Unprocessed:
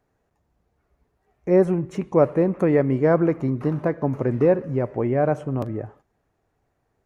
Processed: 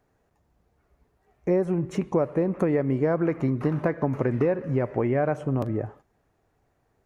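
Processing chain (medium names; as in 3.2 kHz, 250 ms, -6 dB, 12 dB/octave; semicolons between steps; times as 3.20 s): 3.17–5.37 s: dynamic bell 2 kHz, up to +5 dB, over -41 dBFS, Q 0.86; compression 6:1, threshold -22 dBFS, peak gain reduction 11 dB; trim +2 dB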